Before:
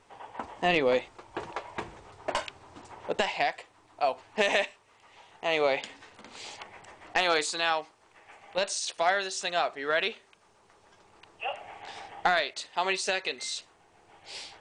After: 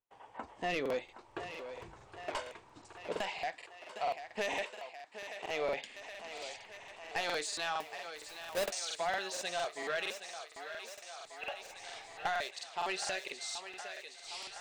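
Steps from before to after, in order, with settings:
0:07.80–0:08.66: each half-wave held at its own peak
noise reduction from a noise print of the clip's start 7 dB
noise gate −59 dBFS, range −27 dB
in parallel at −1.5 dB: downward compressor, threshold −40 dBFS, peak gain reduction 20 dB
on the sum: soft clipping −19 dBFS, distortion −13 dB
on a send: feedback echo with a high-pass in the loop 769 ms, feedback 78%, high-pass 370 Hz, level −10 dB
on the sum: regular buffer underruns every 0.23 s, samples 2,048, repeat, from 0:00.81
level −8 dB

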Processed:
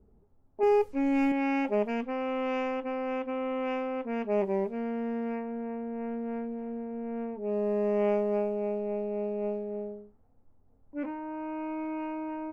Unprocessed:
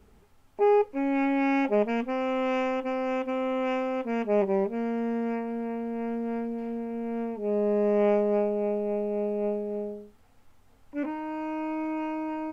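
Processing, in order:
low-pass that shuts in the quiet parts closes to 540 Hz, open at −21 dBFS
0:00.63–0:01.32: bass and treble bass +10 dB, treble +12 dB
level −3.5 dB

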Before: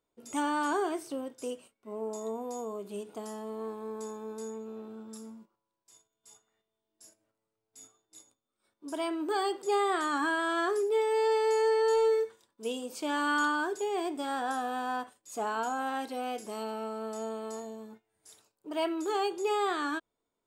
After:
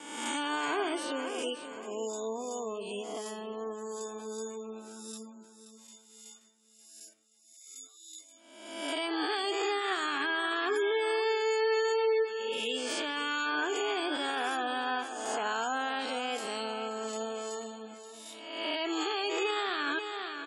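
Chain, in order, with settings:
peak hold with a rise ahead of every peak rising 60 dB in 1.05 s
asymmetric clip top −24 dBFS
meter weighting curve D
downward expander −58 dBFS
high-pass filter 67 Hz 6 dB per octave
repeating echo 529 ms, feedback 40%, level −11.5 dB
gate on every frequency bin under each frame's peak −25 dB strong
brickwall limiter −21.5 dBFS, peak gain reduction 8 dB
parametric band 5,100 Hz −5.5 dB 1.4 octaves

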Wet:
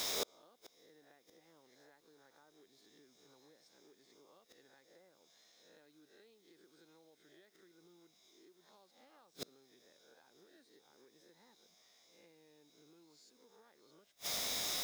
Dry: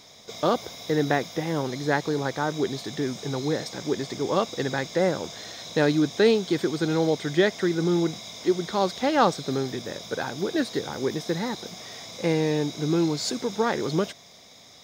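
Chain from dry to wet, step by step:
peak hold with a rise ahead of every peak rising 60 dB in 0.50 s
high-pass filter 240 Hz 12 dB per octave
high-shelf EQ 2,600 Hz +5.5 dB
downward compressor 10 to 1, threshold −29 dBFS, peak gain reduction 17.5 dB
bit-depth reduction 8 bits, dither triangular
gate with flip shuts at −30 dBFS, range −38 dB
level +5 dB

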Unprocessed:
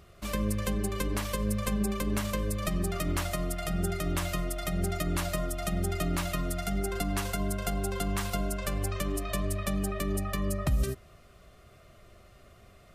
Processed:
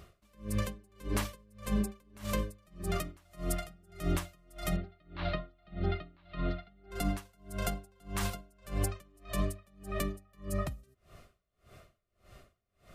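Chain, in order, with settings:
0:04.76–0:06.91: elliptic low-pass filter 4,100 Hz, stop band 50 dB
brickwall limiter −21.5 dBFS, peak gain reduction 4.5 dB
tremolo with a sine in dB 1.7 Hz, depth 34 dB
level +2 dB

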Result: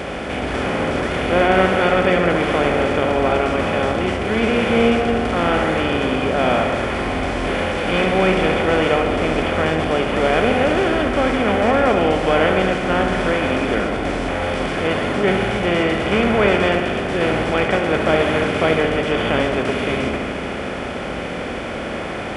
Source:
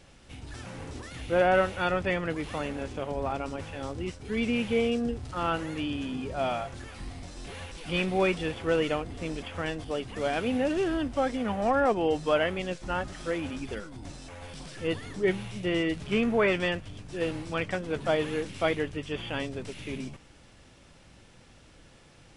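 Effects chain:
compressor on every frequency bin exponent 0.4
high-pass filter 52 Hz
low-shelf EQ 70 Hz +8.5 dB
notch filter 2,700 Hz, Q 16
delay with a low-pass on its return 69 ms, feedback 78%, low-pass 3,600 Hz, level −8 dB
level +3 dB

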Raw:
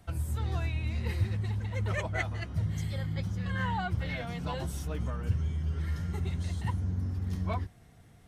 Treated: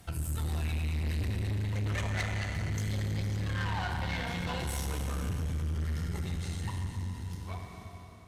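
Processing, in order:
fade-out on the ending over 2.35 s
notch filter 620 Hz, Q 14
four-comb reverb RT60 3.5 s, combs from 30 ms, DRR 1 dB
tube saturation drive 29 dB, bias 0.55
high-shelf EQ 2,900 Hz +8.5 dB
in parallel at +1.5 dB: downward compressor, threshold −43 dBFS, peak gain reduction 13 dB
on the sum: level −2 dB

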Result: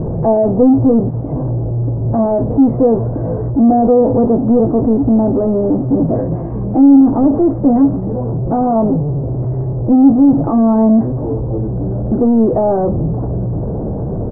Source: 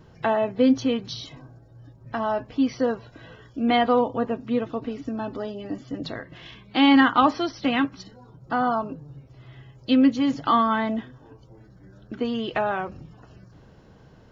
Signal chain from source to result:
treble cut that deepens with the level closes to 510 Hz, closed at −14.5 dBFS
power curve on the samples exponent 0.35
inverse Chebyshev low-pass filter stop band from 4,000 Hz, stop band 80 dB
double-tracking delay 18 ms −12.5 dB
level +6 dB

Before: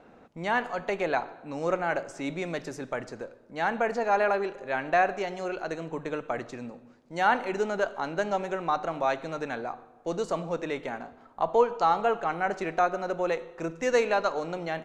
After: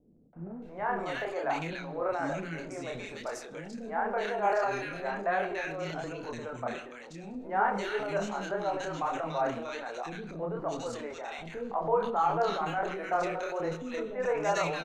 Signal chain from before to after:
three-band delay without the direct sound lows, mids, highs 330/620 ms, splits 360/1,800 Hz
multi-voice chorus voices 2, 1.2 Hz, delay 28 ms, depth 3.7 ms
transient designer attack 0 dB, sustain +6 dB

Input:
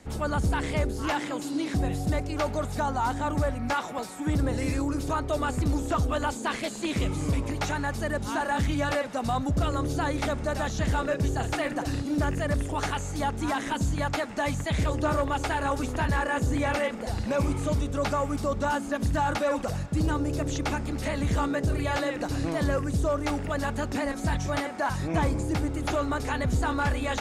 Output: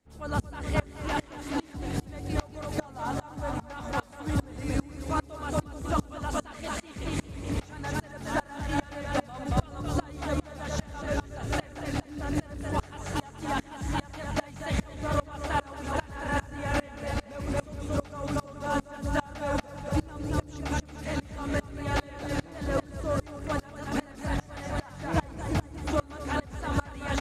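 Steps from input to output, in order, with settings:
bouncing-ball delay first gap 230 ms, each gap 0.85×, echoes 5
tremolo with a ramp in dB swelling 2.5 Hz, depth 26 dB
level +1.5 dB

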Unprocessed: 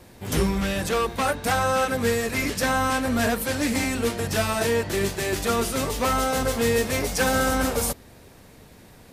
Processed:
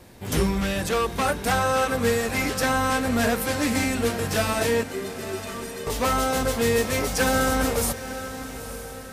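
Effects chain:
0:04.83–0:05.87: stiff-string resonator 180 Hz, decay 0.24 s, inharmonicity 0.03
feedback delay with all-pass diffusion 909 ms, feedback 45%, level −12 dB

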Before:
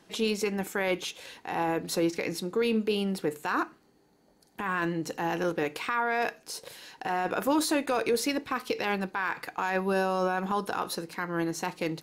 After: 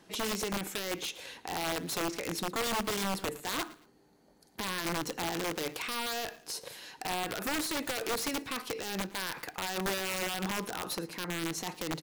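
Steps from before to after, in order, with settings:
brickwall limiter −25 dBFS, peak gain reduction 9.5 dB
wrap-around overflow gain 26.5 dB
repeating echo 113 ms, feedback 31%, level −20 dB

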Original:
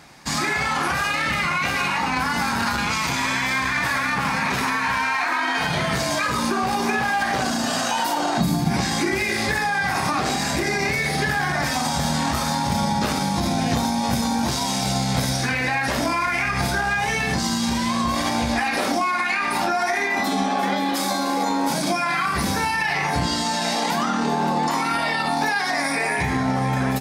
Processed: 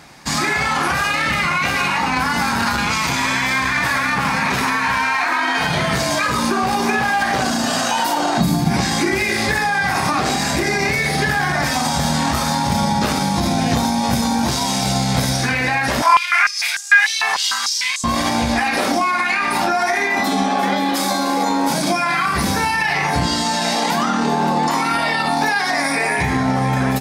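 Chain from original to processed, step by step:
0:16.02–0:18.04: high-pass on a step sequencer 6.7 Hz 1,000–7,000 Hz
level +4 dB

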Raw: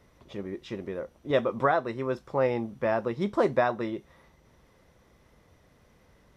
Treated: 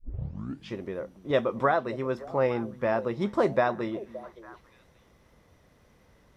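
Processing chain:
turntable start at the beginning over 0.72 s
echo through a band-pass that steps 285 ms, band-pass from 180 Hz, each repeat 1.4 octaves, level −11.5 dB

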